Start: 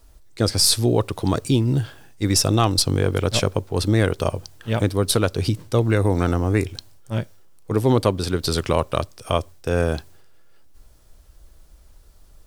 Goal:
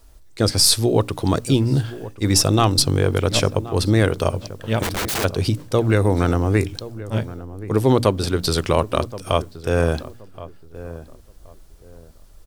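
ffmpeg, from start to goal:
ffmpeg -i in.wav -filter_complex "[0:a]bandreject=frequency=60:width_type=h:width=6,bandreject=frequency=120:width_type=h:width=6,bandreject=frequency=180:width_type=h:width=6,bandreject=frequency=240:width_type=h:width=6,bandreject=frequency=300:width_type=h:width=6,asplit=2[link_01][link_02];[link_02]adelay=1074,lowpass=frequency=1100:poles=1,volume=-15dB,asplit=2[link_03][link_04];[link_04]adelay=1074,lowpass=frequency=1100:poles=1,volume=0.28,asplit=2[link_05][link_06];[link_06]adelay=1074,lowpass=frequency=1100:poles=1,volume=0.28[link_07];[link_01][link_03][link_05][link_07]amix=inputs=4:normalize=0,asplit=3[link_08][link_09][link_10];[link_08]afade=type=out:start_time=4.82:duration=0.02[link_11];[link_09]aeval=exprs='(mod(10.6*val(0)+1,2)-1)/10.6':channel_layout=same,afade=type=in:start_time=4.82:duration=0.02,afade=type=out:start_time=5.23:duration=0.02[link_12];[link_10]afade=type=in:start_time=5.23:duration=0.02[link_13];[link_11][link_12][link_13]amix=inputs=3:normalize=0,volume=2dB" out.wav

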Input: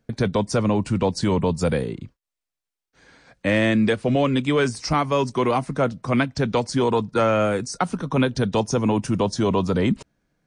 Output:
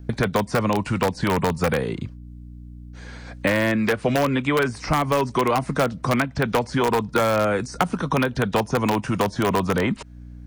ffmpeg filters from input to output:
ffmpeg -i in.wav -filter_complex "[0:a]aeval=exprs='val(0)+0.00447*(sin(2*PI*60*n/s)+sin(2*PI*2*60*n/s)/2+sin(2*PI*3*60*n/s)/3+sin(2*PI*4*60*n/s)/4+sin(2*PI*5*60*n/s)/5)':channel_layout=same,acrossover=split=2700[link_01][link_02];[link_02]acompressor=threshold=-47dB:ratio=4:attack=1:release=60[link_03];[link_01][link_03]amix=inputs=2:normalize=0,asplit=2[link_04][link_05];[link_05]aeval=exprs='(mod(3.98*val(0)+1,2)-1)/3.98':channel_layout=same,volume=-7dB[link_06];[link_04][link_06]amix=inputs=2:normalize=0,acrossover=split=710|2300[link_07][link_08][link_09];[link_07]acompressor=threshold=-29dB:ratio=4[link_10];[link_08]acompressor=threshold=-29dB:ratio=4[link_11];[link_09]acompressor=threshold=-39dB:ratio=4[link_12];[link_10][link_11][link_12]amix=inputs=3:normalize=0,volume=6dB" out.wav

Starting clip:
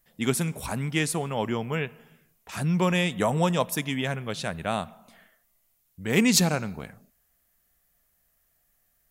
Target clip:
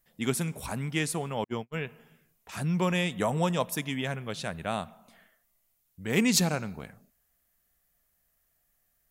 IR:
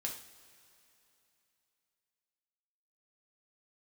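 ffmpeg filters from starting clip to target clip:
-filter_complex "[0:a]asettb=1/sr,asplit=3[link_01][link_02][link_03];[link_01]atrim=end=1.444[link_04];[link_02]atrim=start=1.44:end=1.85,asetpts=PTS-STARTPTS,afade=type=in:duration=0.004:curve=qsin,afade=type=out:start_time=0.406:duration=0.004:curve=qsin,agate=range=-49dB:threshold=-27dB:ratio=16:detection=peak[link_05];[link_03]atrim=start=1.846[link_06];[link_04][link_05]acrossfade=duration=0.004:curve1=hsin:curve2=qsin[link_07];[link_07][link_06]acrossfade=duration=0.004:curve1=qsin:curve2=hsin,volume=-3.5dB"

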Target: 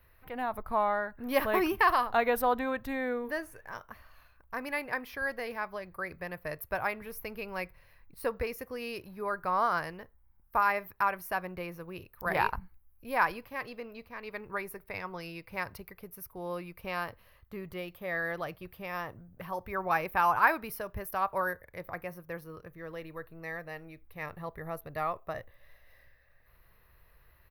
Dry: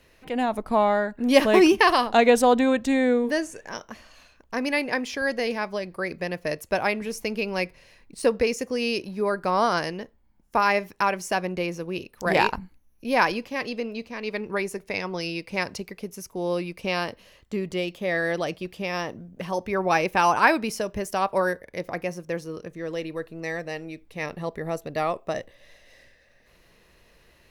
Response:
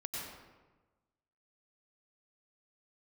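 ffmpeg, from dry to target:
-af "firequalizer=gain_entry='entry(100,0);entry(210,-15);entry(1200,-2);entry(2900,-14);entry(4200,-14);entry(7200,-25);entry(13000,7)':delay=0.05:min_phase=1"

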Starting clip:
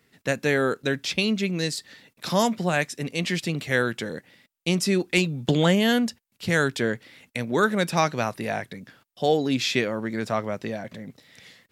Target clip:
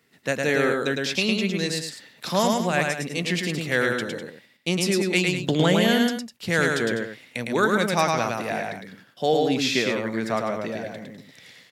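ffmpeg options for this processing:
ffmpeg -i in.wav -af "highpass=frequency=150:poles=1,aecho=1:1:107.9|201.2:0.708|0.282" out.wav

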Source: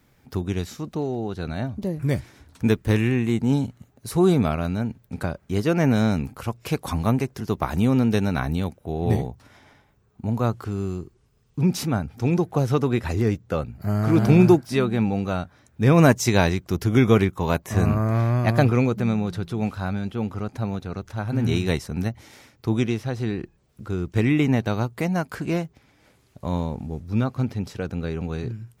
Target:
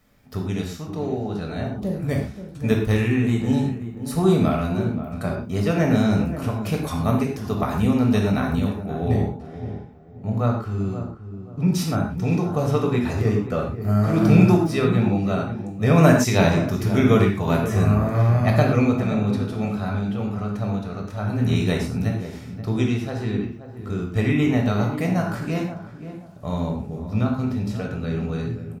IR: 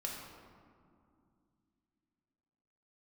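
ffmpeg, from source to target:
-filter_complex "[0:a]asettb=1/sr,asplit=3[link_01][link_02][link_03];[link_01]atrim=end=9.084[link_04];[link_02]atrim=start=9.08:end=11.68,asetpts=PTS-STARTPTS,afade=type=in:duration=0.004:curve=qsin,afade=type=out:start_time=2.596:duration=0.004:curve=qsin,highshelf=frequency=5600:gain=-9.5[link_05];[link_03]atrim=start=11.676[link_06];[link_04][link_05]acrossfade=duration=0.004:curve1=hsin:curve2=qsin[link_07];[link_07][link_06]acrossfade=duration=0.004:curve1=qsin:curve2=hsin,asplit=2[link_08][link_09];[link_09]adelay=529,lowpass=frequency=1100:poles=1,volume=-10.5dB,asplit=2[link_10][link_11];[link_11]adelay=529,lowpass=frequency=1100:poles=1,volume=0.31,asplit=2[link_12][link_13];[link_13]adelay=529,lowpass=frequency=1100:poles=1,volume=0.31[link_14];[link_08][link_10][link_12][link_14]amix=inputs=4:normalize=0[link_15];[1:a]atrim=start_sample=2205,afade=type=out:start_time=0.18:duration=0.01,atrim=end_sample=8379[link_16];[link_15][link_16]afir=irnorm=-1:irlink=0,volume=1.5dB"

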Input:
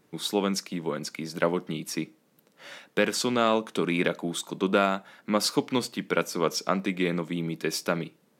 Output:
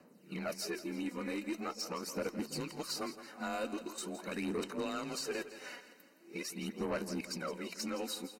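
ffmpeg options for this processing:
ffmpeg -i in.wav -filter_complex "[0:a]areverse,acrossover=split=1000|4700[link_01][link_02][link_03];[link_01]acompressor=threshold=-35dB:ratio=4[link_04];[link_02]acompressor=threshold=-43dB:ratio=4[link_05];[link_03]acompressor=threshold=-42dB:ratio=4[link_06];[link_04][link_05][link_06]amix=inputs=3:normalize=0,aphaser=in_gain=1:out_gain=1:delay=4.2:decay=0.59:speed=0.43:type=sinusoidal,afreqshift=25,flanger=delay=3.7:depth=3.3:regen=-77:speed=1.8:shape=sinusoidal,asoftclip=type=tanh:threshold=-32dB,asuperstop=centerf=3400:order=12:qfactor=5.9,asplit=2[link_07][link_08];[link_08]aecho=0:1:166|332|498|664|830:0.224|0.103|0.0474|0.0218|0.01[link_09];[link_07][link_09]amix=inputs=2:normalize=0,volume=2dB" out.wav

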